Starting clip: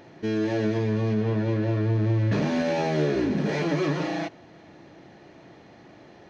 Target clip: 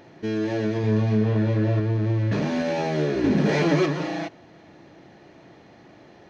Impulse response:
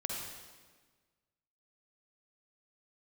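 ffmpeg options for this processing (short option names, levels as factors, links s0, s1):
-filter_complex "[0:a]asettb=1/sr,asplit=3[s0][s1][s2];[s0]atrim=end=0.804[s3];[s1]atrim=start=0.8:end=1.8,asetpts=PTS-STARTPTS,afade=t=in:d=0.004:c=qsin,afade=t=out:st=0.996:d=0.004:c=qsin,asplit=2[s4][s5];[s5]adelay=37,volume=0.708[s6];[s4][s6]amix=inputs=2:normalize=0,atrim=end_sample=44100[s7];[s2]atrim=start=1.796[s8];[s3][s7]acrossfade=d=0.004:c1=hsin:c2=qsin[s9];[s9][s8]acrossfade=d=0.004:c1=qsin:c2=hsin,asettb=1/sr,asplit=3[s10][s11][s12];[s10]atrim=end=3.244[s13];[s11]atrim=start=3.24:end=3.86,asetpts=PTS-STARTPTS,afade=t=in:d=0.004:c=qsin,afade=t=out:st=0.616:d=0.004:c=qsin,acontrast=30[s14];[s12]atrim=start=3.856[s15];[s13][s14]acrossfade=d=0.004:c1=hsin:c2=qsin[s16];[s16][s15]acrossfade=d=0.004:c1=qsin:c2=hsin"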